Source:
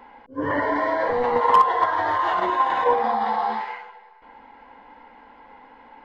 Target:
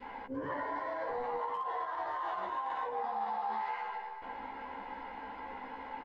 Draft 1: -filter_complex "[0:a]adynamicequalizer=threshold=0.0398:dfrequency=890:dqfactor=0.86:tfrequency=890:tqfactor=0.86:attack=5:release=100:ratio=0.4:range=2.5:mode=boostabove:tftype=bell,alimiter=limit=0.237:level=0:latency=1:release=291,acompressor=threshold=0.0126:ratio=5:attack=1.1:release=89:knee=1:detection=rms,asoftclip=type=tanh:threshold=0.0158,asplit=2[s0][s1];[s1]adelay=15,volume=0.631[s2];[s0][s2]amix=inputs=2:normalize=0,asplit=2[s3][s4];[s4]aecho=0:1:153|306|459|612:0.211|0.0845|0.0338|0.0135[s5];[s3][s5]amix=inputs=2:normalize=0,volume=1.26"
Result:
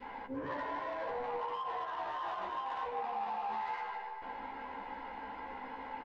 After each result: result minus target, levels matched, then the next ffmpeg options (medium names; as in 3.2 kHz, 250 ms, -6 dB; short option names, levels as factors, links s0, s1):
saturation: distortion +14 dB; echo-to-direct +9 dB
-filter_complex "[0:a]adynamicequalizer=threshold=0.0398:dfrequency=890:dqfactor=0.86:tfrequency=890:tqfactor=0.86:attack=5:release=100:ratio=0.4:range=2.5:mode=boostabove:tftype=bell,alimiter=limit=0.237:level=0:latency=1:release=291,acompressor=threshold=0.0126:ratio=5:attack=1.1:release=89:knee=1:detection=rms,asoftclip=type=tanh:threshold=0.0422,asplit=2[s0][s1];[s1]adelay=15,volume=0.631[s2];[s0][s2]amix=inputs=2:normalize=0,asplit=2[s3][s4];[s4]aecho=0:1:153|306|459|612:0.211|0.0845|0.0338|0.0135[s5];[s3][s5]amix=inputs=2:normalize=0,volume=1.26"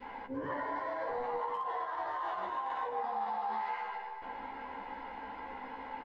echo-to-direct +9 dB
-filter_complex "[0:a]adynamicequalizer=threshold=0.0398:dfrequency=890:dqfactor=0.86:tfrequency=890:tqfactor=0.86:attack=5:release=100:ratio=0.4:range=2.5:mode=boostabove:tftype=bell,alimiter=limit=0.237:level=0:latency=1:release=291,acompressor=threshold=0.0126:ratio=5:attack=1.1:release=89:knee=1:detection=rms,asoftclip=type=tanh:threshold=0.0422,asplit=2[s0][s1];[s1]adelay=15,volume=0.631[s2];[s0][s2]amix=inputs=2:normalize=0,asplit=2[s3][s4];[s4]aecho=0:1:153|306|459:0.075|0.03|0.012[s5];[s3][s5]amix=inputs=2:normalize=0,volume=1.26"